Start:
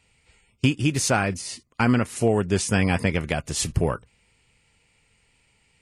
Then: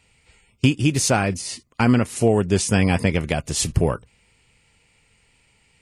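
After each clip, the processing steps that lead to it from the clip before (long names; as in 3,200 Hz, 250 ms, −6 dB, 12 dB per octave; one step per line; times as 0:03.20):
dynamic equaliser 1,500 Hz, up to −4 dB, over −40 dBFS, Q 1.1
level +3.5 dB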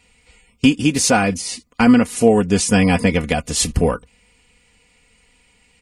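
comb filter 4.1 ms, depth 68%
level +2.5 dB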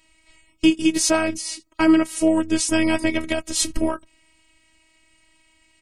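phases set to zero 320 Hz
level −1 dB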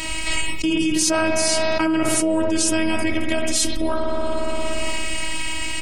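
on a send at −5 dB: convolution reverb RT60 1.6 s, pre-delay 58 ms
on the sum: envelope flattener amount 100%
level −7.5 dB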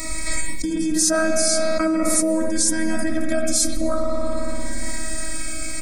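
phaser with its sweep stopped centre 580 Hz, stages 8
dense smooth reverb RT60 2.5 s, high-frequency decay 0.55×, pre-delay 105 ms, DRR 17 dB
phaser whose notches keep moving one way falling 0.49 Hz
level +3.5 dB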